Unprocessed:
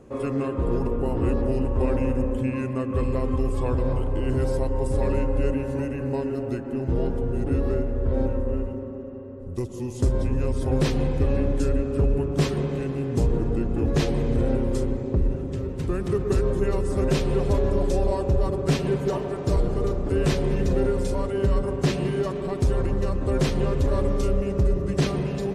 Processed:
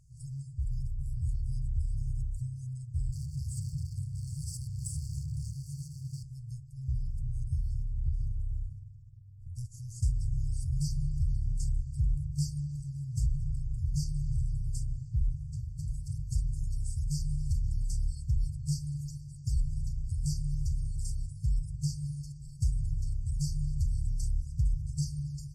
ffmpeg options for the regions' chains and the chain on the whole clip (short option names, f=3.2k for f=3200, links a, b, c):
-filter_complex "[0:a]asettb=1/sr,asplit=3[a][b][c];[a]atrim=end=3.124[d];[b]atrim=start=3.12:end=6.23,asetpts=PTS-STARTPTS,afade=t=in:d=0.004:c=qsin,afade=t=out:st=3.106:d=0.004:c=qsin,aeval=exprs='abs(val(0))':c=same,acontrast=83,highpass=92[e];[c]atrim=start=6.226[f];[d][e]acrossfade=d=0.004:c1=hsin:c2=qsin[g];[g][f]acrossfade=d=0.004:c1=qsin:c2=hsin,afftfilt=real='re*(1-between(b*sr/4096,160,4400))':imag='im*(1-between(b*sr/4096,160,4400))':win_size=4096:overlap=0.75,equalizer=f=8k:t=o:w=0.26:g=7,volume=-6dB"